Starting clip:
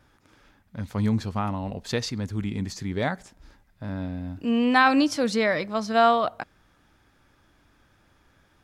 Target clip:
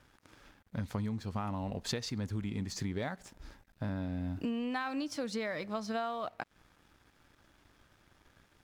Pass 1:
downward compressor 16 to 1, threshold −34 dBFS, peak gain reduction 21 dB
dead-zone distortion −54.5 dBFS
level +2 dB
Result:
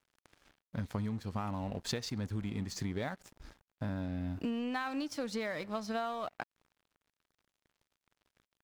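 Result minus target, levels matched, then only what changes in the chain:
dead-zone distortion: distortion +8 dB
change: dead-zone distortion −64 dBFS

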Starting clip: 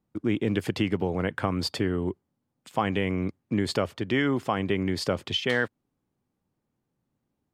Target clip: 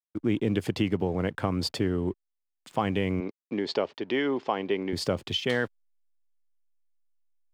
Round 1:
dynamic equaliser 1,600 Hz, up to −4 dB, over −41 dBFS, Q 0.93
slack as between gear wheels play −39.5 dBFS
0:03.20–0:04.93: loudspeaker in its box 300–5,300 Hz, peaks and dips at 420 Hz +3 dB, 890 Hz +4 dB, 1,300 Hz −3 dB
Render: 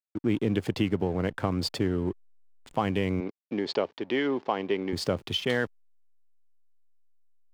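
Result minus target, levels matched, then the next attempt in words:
slack as between gear wheels: distortion +11 dB
dynamic equaliser 1,600 Hz, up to −4 dB, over −41 dBFS, Q 0.93
slack as between gear wheels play −51 dBFS
0:03.20–0:04.93: loudspeaker in its box 300–5,300 Hz, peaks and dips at 420 Hz +3 dB, 890 Hz +4 dB, 1,300 Hz −3 dB

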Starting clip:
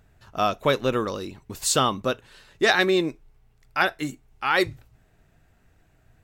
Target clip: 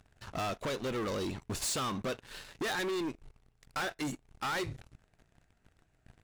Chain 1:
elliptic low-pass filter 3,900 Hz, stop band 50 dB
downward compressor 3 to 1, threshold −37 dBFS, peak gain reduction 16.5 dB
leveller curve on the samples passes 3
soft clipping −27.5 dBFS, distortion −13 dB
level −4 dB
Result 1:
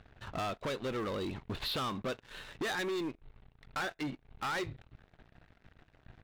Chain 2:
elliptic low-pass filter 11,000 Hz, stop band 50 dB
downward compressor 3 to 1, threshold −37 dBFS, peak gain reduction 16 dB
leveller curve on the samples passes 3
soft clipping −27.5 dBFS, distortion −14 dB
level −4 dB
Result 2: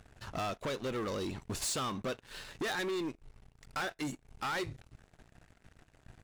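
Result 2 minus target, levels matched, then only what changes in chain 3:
downward compressor: peak gain reduction +4 dB
change: downward compressor 3 to 1, threshold −31 dBFS, peak gain reduction 12 dB

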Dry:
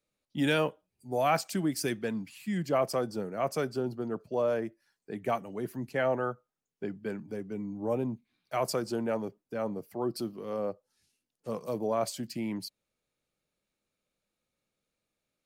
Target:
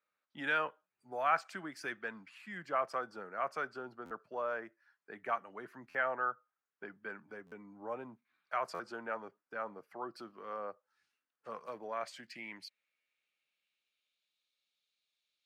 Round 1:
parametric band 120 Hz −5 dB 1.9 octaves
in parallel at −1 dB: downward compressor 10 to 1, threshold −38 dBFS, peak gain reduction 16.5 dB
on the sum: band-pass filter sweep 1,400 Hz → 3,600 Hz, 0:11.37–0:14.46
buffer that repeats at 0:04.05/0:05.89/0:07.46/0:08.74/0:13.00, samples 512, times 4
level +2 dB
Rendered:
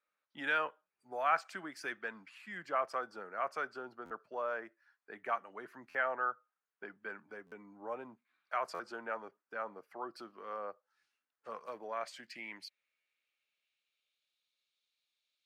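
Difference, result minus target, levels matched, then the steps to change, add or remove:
125 Hz band −5.0 dB
change: parametric band 120 Hz +2 dB 1.9 octaves

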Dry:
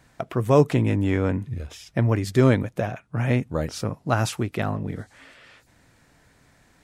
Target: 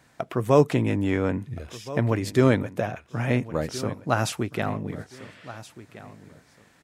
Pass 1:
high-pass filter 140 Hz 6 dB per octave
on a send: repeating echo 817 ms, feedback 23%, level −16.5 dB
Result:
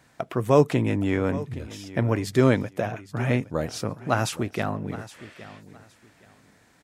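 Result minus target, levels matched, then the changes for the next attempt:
echo 556 ms early
change: repeating echo 1,373 ms, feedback 23%, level −16.5 dB

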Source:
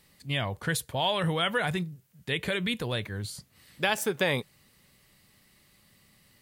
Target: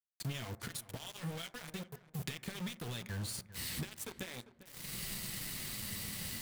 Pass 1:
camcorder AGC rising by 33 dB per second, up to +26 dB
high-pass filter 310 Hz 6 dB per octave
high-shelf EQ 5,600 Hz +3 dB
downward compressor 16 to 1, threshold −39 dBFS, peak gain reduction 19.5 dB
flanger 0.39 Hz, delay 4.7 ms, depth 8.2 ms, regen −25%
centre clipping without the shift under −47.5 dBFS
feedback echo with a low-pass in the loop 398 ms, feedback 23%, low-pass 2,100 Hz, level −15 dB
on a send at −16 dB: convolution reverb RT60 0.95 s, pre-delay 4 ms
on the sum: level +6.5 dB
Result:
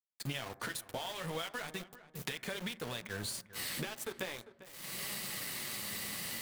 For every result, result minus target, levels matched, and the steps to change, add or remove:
1,000 Hz band +4.5 dB; 250 Hz band −3.0 dB
add after downward compressor: parametric band 810 Hz −10.5 dB 1.9 octaves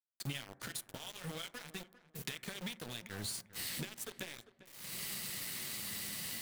250 Hz band −3.0 dB
remove: high-pass filter 310 Hz 6 dB per octave

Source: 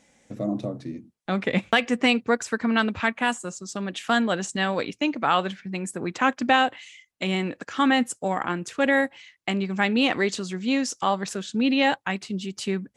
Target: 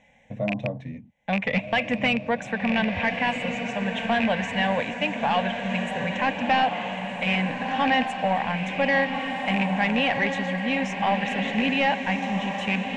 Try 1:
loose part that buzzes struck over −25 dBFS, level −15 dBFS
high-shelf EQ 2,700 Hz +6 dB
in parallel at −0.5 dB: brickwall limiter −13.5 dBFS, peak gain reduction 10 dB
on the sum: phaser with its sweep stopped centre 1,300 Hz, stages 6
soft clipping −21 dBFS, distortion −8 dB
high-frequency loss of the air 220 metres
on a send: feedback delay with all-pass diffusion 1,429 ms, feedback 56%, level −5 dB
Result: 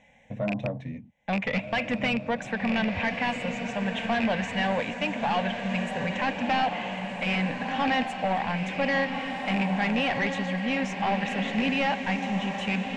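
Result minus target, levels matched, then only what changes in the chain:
soft clipping: distortion +7 dB
change: soft clipping −14 dBFS, distortion −15 dB

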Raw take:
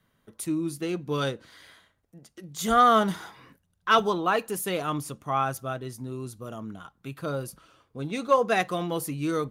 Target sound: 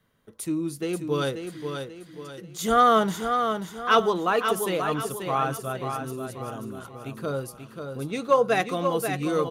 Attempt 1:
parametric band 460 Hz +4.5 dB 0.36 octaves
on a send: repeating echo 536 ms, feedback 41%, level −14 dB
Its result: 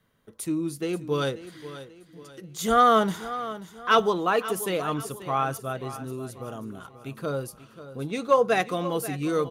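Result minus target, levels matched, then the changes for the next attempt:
echo-to-direct −7.5 dB
change: repeating echo 536 ms, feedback 41%, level −6.5 dB

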